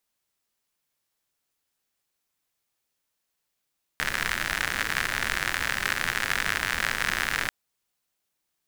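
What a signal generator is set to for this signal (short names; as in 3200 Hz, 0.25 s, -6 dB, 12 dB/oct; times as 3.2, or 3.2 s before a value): rain from filtered ticks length 3.49 s, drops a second 92, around 1700 Hz, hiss -8.5 dB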